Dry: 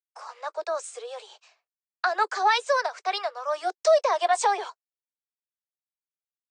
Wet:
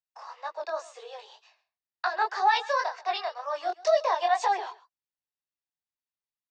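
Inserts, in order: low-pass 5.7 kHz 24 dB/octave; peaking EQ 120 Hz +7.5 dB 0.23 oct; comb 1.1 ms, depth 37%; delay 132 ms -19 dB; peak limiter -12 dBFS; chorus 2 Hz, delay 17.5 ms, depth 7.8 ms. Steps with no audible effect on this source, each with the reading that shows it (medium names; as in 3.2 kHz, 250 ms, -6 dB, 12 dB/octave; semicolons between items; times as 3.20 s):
peaking EQ 120 Hz: input has nothing below 340 Hz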